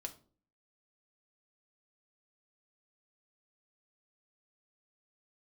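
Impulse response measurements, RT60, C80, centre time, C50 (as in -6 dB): 0.45 s, 20.0 dB, 8 ms, 15.0 dB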